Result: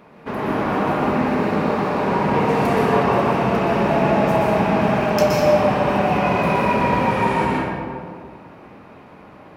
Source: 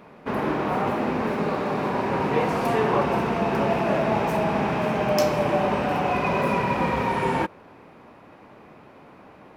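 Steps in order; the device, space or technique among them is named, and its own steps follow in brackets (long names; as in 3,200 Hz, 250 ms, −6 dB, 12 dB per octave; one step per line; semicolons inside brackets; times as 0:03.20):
stairwell (convolution reverb RT60 1.9 s, pre-delay 115 ms, DRR −3 dB)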